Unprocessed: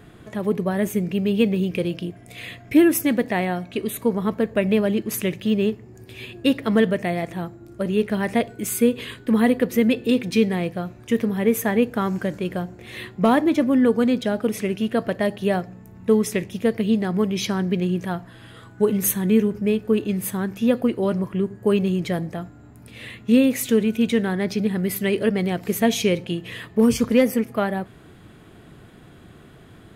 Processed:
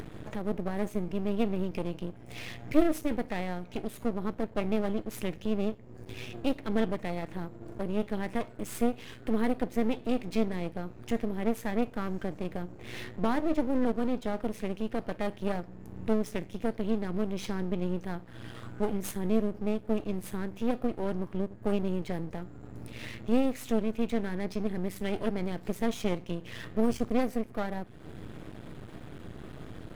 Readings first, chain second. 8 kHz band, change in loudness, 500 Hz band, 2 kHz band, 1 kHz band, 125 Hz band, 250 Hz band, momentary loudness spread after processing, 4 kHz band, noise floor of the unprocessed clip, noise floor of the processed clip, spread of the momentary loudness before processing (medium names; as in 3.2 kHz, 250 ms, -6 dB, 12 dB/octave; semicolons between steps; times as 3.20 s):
-16.0 dB, -11.0 dB, -10.5 dB, -12.0 dB, -8.0 dB, -10.0 dB, -10.5 dB, 13 LU, -12.5 dB, -47 dBFS, -48 dBFS, 12 LU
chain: median filter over 3 samples; bass shelf 480 Hz +6.5 dB; upward compressor, threshold -16 dBFS; feedback comb 310 Hz, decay 0.29 s, harmonics all, mix 60%; half-wave rectifier; trim -4 dB